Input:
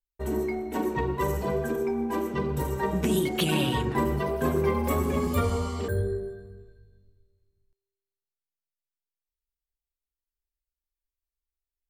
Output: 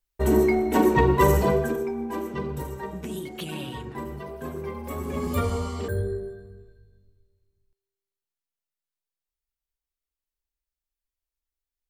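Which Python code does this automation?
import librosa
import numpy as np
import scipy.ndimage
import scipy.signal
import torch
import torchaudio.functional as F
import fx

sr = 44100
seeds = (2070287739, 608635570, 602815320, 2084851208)

y = fx.gain(x, sr, db=fx.line((1.39, 9.0), (1.91, -2.0), (2.47, -2.0), (3.02, -9.0), (4.84, -9.0), (5.33, 0.0)))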